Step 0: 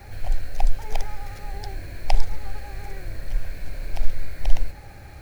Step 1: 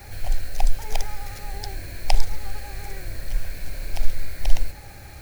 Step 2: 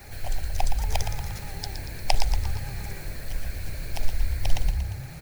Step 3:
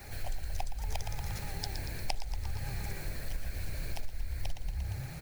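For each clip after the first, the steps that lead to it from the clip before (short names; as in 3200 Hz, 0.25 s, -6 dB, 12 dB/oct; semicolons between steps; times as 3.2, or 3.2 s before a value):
high shelf 3600 Hz +9.5 dB
harmonic-percussive split harmonic -8 dB; frequency-shifting echo 0.117 s, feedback 52%, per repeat +31 Hz, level -8 dB; gain +1.5 dB
compressor 6:1, threshold -27 dBFS, peak gain reduction 15.5 dB; gain -2.5 dB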